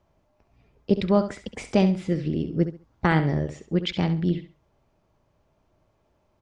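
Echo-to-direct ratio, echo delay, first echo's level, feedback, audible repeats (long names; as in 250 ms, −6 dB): −10.5 dB, 68 ms, −11.0 dB, 24%, 2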